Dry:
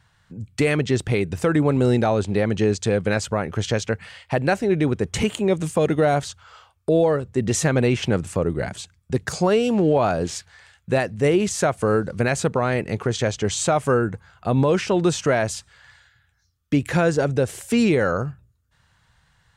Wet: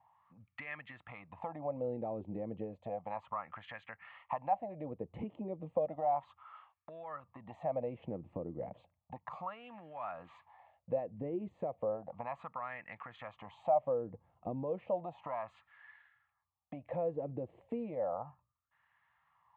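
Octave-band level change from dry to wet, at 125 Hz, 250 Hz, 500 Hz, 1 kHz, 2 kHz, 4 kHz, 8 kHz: -26.0 dB, -23.0 dB, -17.5 dB, -11.5 dB, -23.5 dB, under -30 dB, under -40 dB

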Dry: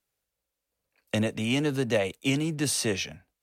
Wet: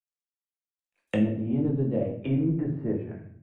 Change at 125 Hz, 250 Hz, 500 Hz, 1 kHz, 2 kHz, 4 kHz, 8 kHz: +3.5 dB, +2.5 dB, -2.0 dB, -6.5 dB, -12.5 dB, under -15 dB, under -30 dB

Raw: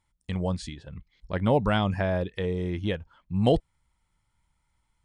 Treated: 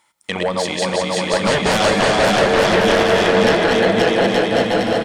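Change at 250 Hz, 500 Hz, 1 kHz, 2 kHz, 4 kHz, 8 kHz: +10.0 dB, +15.0 dB, +16.0 dB, +20.0 dB, +19.5 dB, n/a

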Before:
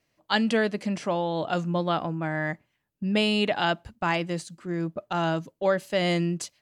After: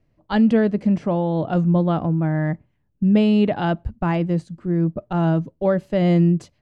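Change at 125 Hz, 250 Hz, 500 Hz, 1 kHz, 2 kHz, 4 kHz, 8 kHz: +11.5 dB, +10.0 dB, +4.5 dB, +1.0 dB, -4.0 dB, -7.5 dB, under -10 dB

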